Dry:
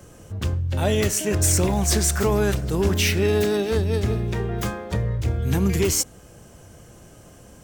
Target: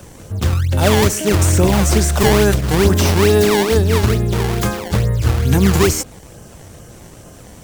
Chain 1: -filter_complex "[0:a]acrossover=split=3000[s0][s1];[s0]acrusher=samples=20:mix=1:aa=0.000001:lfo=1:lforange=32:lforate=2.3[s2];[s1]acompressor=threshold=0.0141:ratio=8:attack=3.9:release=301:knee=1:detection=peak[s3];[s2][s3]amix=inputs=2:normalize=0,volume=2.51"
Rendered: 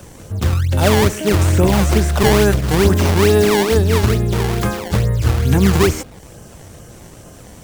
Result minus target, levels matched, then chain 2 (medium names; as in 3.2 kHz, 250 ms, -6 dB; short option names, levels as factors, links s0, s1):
compression: peak gain reduction +9.5 dB
-filter_complex "[0:a]acrossover=split=3000[s0][s1];[s0]acrusher=samples=20:mix=1:aa=0.000001:lfo=1:lforange=32:lforate=2.3[s2];[s1]acompressor=threshold=0.0501:ratio=8:attack=3.9:release=301:knee=1:detection=peak[s3];[s2][s3]amix=inputs=2:normalize=0,volume=2.51"